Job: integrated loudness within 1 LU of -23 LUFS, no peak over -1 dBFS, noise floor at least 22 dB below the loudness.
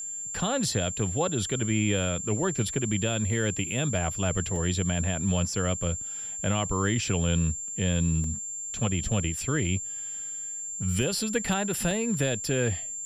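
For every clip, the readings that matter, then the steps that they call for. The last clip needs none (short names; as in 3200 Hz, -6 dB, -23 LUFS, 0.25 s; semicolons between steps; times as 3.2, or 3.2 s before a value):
dropouts 3; longest dropout 1.9 ms; steady tone 7300 Hz; tone level -33 dBFS; loudness -27.5 LUFS; peak -14.0 dBFS; loudness target -23.0 LUFS
-> interpolate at 4.56/8.24/11.91, 1.9 ms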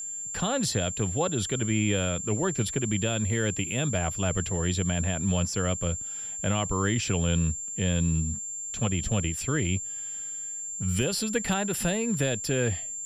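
dropouts 0; steady tone 7300 Hz; tone level -33 dBFS
-> notch 7300 Hz, Q 30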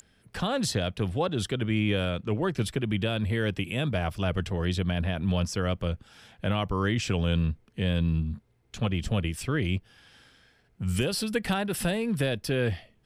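steady tone none; loudness -29.0 LUFS; peak -15.0 dBFS; loudness target -23.0 LUFS
-> gain +6 dB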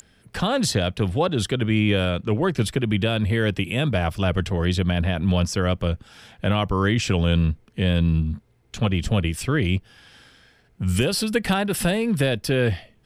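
loudness -23.0 LUFS; peak -9.0 dBFS; noise floor -59 dBFS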